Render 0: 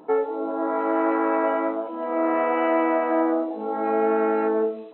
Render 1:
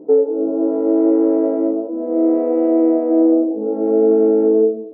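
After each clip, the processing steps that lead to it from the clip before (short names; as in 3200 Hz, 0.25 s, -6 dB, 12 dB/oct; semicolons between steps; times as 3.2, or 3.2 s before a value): EQ curve 170 Hz 0 dB, 300 Hz +7 dB, 520 Hz +4 dB, 1000 Hz -20 dB, 2200 Hz -27 dB; gain +4.5 dB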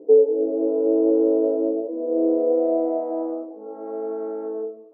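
band-pass sweep 470 Hz -> 1200 Hz, 2.41–3.5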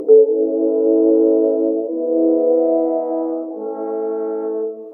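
upward compressor, threshold -22 dBFS; gain +5 dB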